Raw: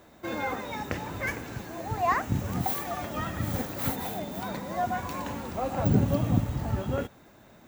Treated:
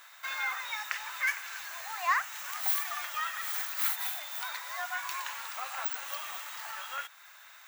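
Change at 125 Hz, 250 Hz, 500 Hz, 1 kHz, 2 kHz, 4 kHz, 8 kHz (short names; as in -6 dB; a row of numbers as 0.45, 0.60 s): under -40 dB, under -40 dB, -19.0 dB, -4.5 dB, +3.5 dB, +4.5 dB, +4.0 dB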